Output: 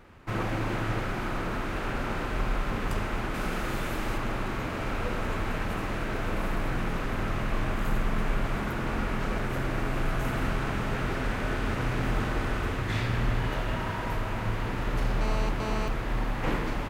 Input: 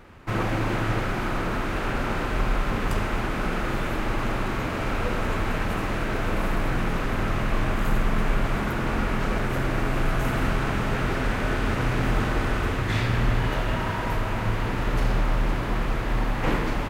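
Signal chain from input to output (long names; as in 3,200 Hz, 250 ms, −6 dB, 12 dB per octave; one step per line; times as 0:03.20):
0:03.34–0:04.18: high-shelf EQ 5,000 Hz +8 dB
0:15.21–0:15.88: phone interference −30 dBFS
level −4.5 dB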